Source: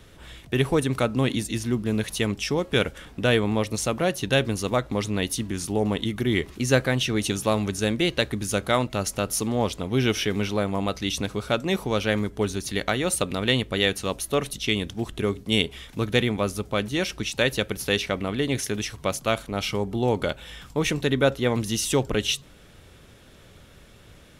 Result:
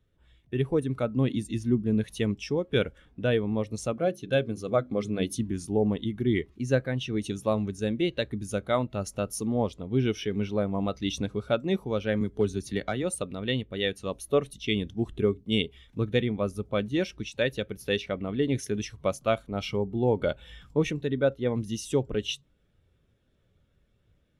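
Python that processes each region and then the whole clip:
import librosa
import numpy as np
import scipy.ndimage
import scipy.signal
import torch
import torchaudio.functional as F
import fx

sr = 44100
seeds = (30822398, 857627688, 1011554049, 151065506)

y = fx.chain(x, sr, fx.hum_notches(base_hz=50, count=8),
    fx.notch_comb(f0_hz=930.0), at=(3.93, 5.39))
y = fx.chain(y, sr, fx.clip_hard(threshold_db=-16.0),
    fx.band_squash(depth_pct=40), at=(12.21, 13.03))
y = fx.rider(y, sr, range_db=10, speed_s=0.5)
y = fx.spectral_expand(y, sr, expansion=1.5)
y = y * librosa.db_to_amplitude(-4.5)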